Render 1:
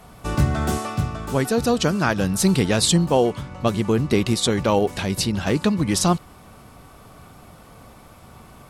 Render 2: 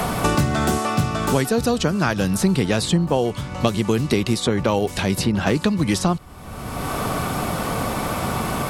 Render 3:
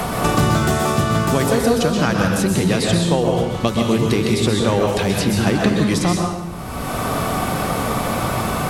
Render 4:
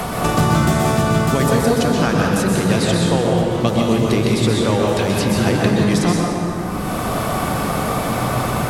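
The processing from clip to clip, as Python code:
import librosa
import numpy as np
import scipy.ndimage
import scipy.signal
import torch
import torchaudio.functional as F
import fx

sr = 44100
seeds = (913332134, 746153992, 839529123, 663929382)

y1 = fx.band_squash(x, sr, depth_pct=100)
y2 = fx.rev_plate(y1, sr, seeds[0], rt60_s=1.0, hf_ratio=0.8, predelay_ms=110, drr_db=0.0)
y3 = fx.rev_plate(y2, sr, seeds[1], rt60_s=4.2, hf_ratio=0.35, predelay_ms=115, drr_db=3.5)
y3 = y3 * librosa.db_to_amplitude(-1.0)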